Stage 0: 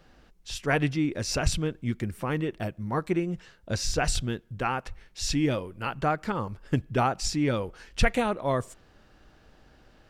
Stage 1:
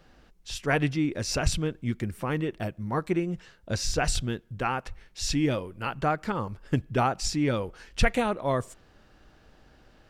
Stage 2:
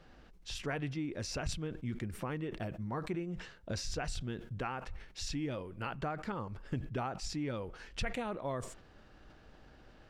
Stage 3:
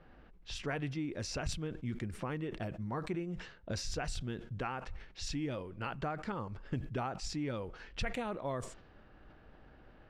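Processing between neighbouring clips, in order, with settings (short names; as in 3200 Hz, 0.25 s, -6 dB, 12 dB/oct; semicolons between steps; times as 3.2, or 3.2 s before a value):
nothing audible
compressor 3:1, threshold -36 dBFS, peak gain reduction 15.5 dB; high shelf 7600 Hz -10 dB; sustainer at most 89 dB/s; gain -1.5 dB
low-pass opened by the level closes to 2100 Hz, open at -34 dBFS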